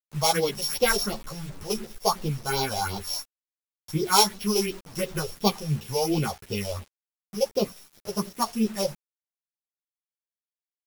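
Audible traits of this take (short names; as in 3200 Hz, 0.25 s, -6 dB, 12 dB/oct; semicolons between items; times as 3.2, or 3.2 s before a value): a buzz of ramps at a fixed pitch in blocks of 8 samples; phasing stages 4, 2.8 Hz, lowest notch 250–1800 Hz; a quantiser's noise floor 8-bit, dither none; a shimmering, thickened sound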